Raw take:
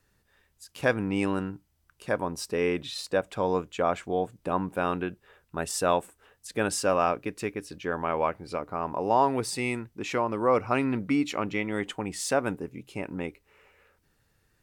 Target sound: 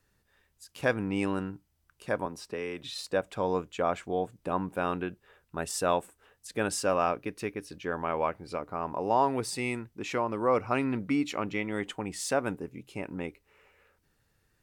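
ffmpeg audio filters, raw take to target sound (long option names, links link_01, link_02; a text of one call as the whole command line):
ffmpeg -i in.wav -filter_complex "[0:a]asettb=1/sr,asplit=3[link_01][link_02][link_03];[link_01]atrim=end=2.264[link_04];[link_02]atrim=start=2.26:end=2.84,asetpts=PTS-STARTPTS,afade=type=in:duration=0.004:curve=qsin,afade=type=out:start_time=0.576:duration=0.004:curve=qsin,acrossover=split=180|500|4000[link_05][link_06][link_07][link_08];[link_05]acompressor=threshold=-48dB:ratio=4[link_09];[link_06]acompressor=threshold=-37dB:ratio=4[link_10];[link_07]acompressor=threshold=-35dB:ratio=4[link_11];[link_08]acompressor=threshold=-48dB:ratio=4[link_12];[link_09][link_10][link_11][link_12]amix=inputs=4:normalize=0[link_13];[link_03]atrim=start=2.836[link_14];[link_04][link_13]acrossfade=duration=0.004:curve1=hsin:curve2=qsin[link_15];[link_15][link_14]acrossfade=duration=0.004:curve1=qsin:curve2=hsin,asettb=1/sr,asplit=3[link_16][link_17][link_18];[link_16]atrim=end=7.074[link_19];[link_17]atrim=start=7.07:end=7.68,asetpts=PTS-STARTPTS,afade=type=in:duration=0.004:curve=qsin,afade=type=out:start_time=0.606:duration=0.004:curve=qsin,bandreject=frequency=7500:width=7.6[link_20];[link_18]atrim=start=7.676[link_21];[link_19][link_20]acrossfade=duration=0.004:curve1=hsin:curve2=qsin[link_22];[link_22][link_21]acrossfade=duration=0.004:curve1=qsin:curve2=hsin,volume=-2.5dB" out.wav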